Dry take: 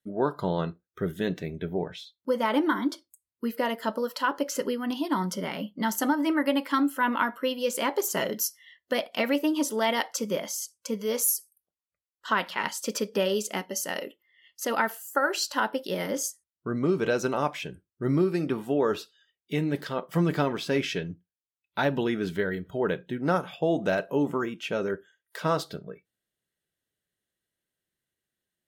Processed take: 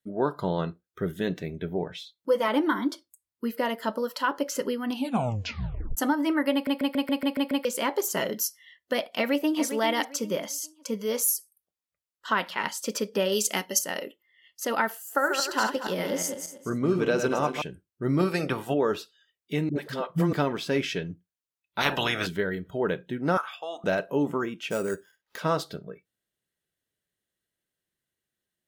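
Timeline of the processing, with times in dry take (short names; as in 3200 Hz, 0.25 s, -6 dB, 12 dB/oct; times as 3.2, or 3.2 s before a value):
1.94–2.48 comb 6.2 ms, depth 69%
4.91 tape stop 1.06 s
6.53 stutter in place 0.14 s, 8 plays
9.01–9.64 echo throw 0.4 s, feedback 30%, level -11 dB
13.32–13.79 high shelf 2200 Hz +9.5 dB
14.93–17.62 regenerating reverse delay 0.118 s, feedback 47%, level -6 dB
18.18–18.73 spectral limiter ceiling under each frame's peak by 15 dB
19.69–20.33 dispersion highs, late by 68 ms, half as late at 420 Hz
21.8–22.26 spectral limiter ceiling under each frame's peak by 26 dB
23.37–23.84 resonant high-pass 1200 Hz, resonance Q 3.2
24.7–25.38 sample-rate reducer 8400 Hz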